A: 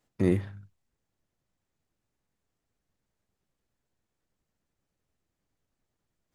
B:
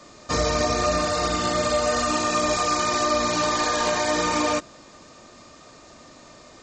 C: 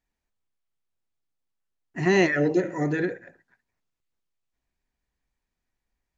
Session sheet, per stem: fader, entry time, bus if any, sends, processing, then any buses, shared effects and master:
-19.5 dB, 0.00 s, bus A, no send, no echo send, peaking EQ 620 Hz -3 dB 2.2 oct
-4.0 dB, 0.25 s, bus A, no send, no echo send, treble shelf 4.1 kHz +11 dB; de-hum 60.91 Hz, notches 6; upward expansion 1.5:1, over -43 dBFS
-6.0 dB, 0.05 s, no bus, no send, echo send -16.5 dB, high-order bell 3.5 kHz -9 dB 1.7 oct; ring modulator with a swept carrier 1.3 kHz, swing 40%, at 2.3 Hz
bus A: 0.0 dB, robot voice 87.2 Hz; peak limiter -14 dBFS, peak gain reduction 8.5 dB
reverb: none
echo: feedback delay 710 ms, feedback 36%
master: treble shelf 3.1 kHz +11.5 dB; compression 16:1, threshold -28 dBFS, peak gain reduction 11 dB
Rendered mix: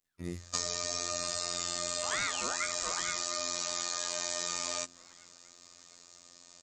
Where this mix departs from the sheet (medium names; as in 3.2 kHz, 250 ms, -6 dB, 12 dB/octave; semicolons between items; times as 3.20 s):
stem A -19.5 dB -> -13.0 dB; stem C: missing high-order bell 3.5 kHz -9 dB 1.7 oct